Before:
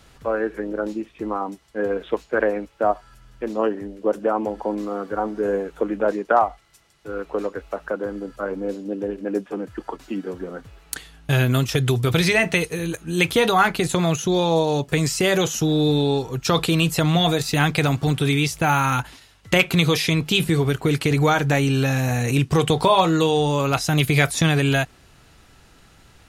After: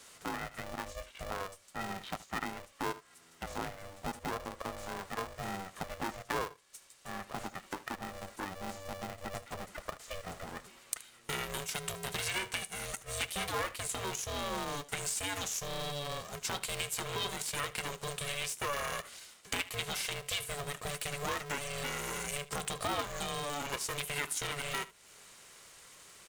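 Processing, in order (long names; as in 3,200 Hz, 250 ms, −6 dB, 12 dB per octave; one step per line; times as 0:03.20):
high-pass filter 650 Hz 6 dB per octave
parametric band 8,300 Hz +10.5 dB 0.87 octaves
comb filter 1.2 ms, depth 43%
dynamic equaliser 4,900 Hz, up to −5 dB, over −36 dBFS, Q 1.3
downward compressor 2.5 to 1, threshold −36 dBFS, peak gain reduction 15.5 dB
on a send: single-tap delay 75 ms −18 dB
on the sum: ring modulator with a square carrier 290 Hz
level −3 dB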